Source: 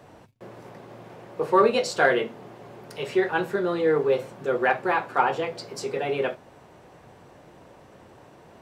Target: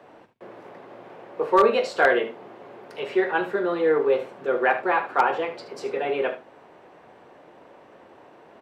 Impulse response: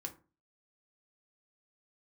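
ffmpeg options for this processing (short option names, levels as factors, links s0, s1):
-filter_complex "[0:a]acrossover=split=230 3600:gain=0.158 1 0.224[s0][s1][s2];[s0][s1][s2]amix=inputs=3:normalize=0,aecho=1:1:42|75:0.15|0.237,aeval=exprs='0.335*(abs(mod(val(0)/0.335+3,4)-2)-1)':c=same,volume=1.19"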